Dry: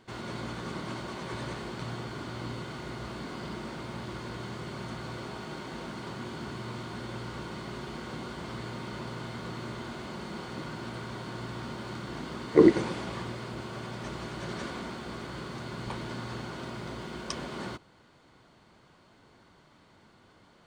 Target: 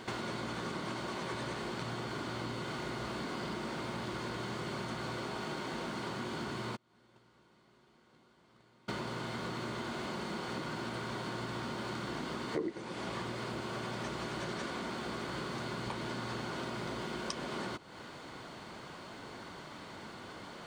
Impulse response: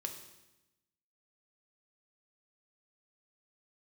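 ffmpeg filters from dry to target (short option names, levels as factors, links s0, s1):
-filter_complex "[0:a]asplit=3[s0][s1][s2];[s0]afade=t=out:st=6.75:d=0.02[s3];[s1]agate=range=0.0126:threshold=0.0251:ratio=16:detection=peak,afade=t=in:st=6.75:d=0.02,afade=t=out:st=8.88:d=0.02[s4];[s2]afade=t=in:st=8.88:d=0.02[s5];[s3][s4][s5]amix=inputs=3:normalize=0,lowshelf=f=120:g=-9.5,acompressor=threshold=0.00316:ratio=6,volume=4.47"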